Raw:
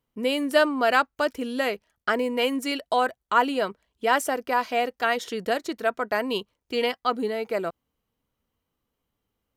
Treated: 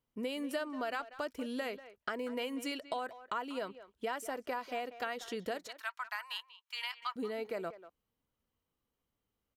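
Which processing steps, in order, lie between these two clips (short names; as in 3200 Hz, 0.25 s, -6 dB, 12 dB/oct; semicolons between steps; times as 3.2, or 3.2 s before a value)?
5.67–7.16 elliptic high-pass 940 Hz, stop band 80 dB; compressor 6:1, threshold -28 dBFS, peak gain reduction 13.5 dB; speakerphone echo 0.19 s, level -14 dB; gain -6.5 dB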